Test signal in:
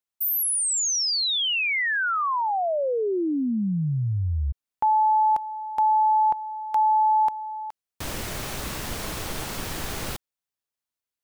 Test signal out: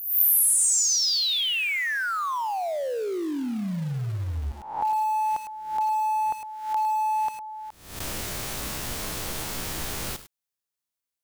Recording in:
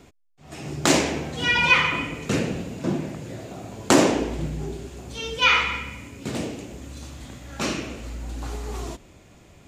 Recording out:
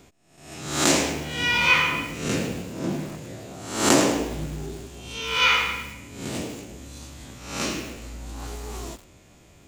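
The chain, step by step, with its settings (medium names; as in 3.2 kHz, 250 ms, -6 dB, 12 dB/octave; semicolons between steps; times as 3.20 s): reverse spectral sustain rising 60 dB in 0.65 s; treble shelf 4.3 kHz +5.5 dB; bit-crushed delay 106 ms, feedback 35%, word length 5-bit, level -10 dB; trim -4.5 dB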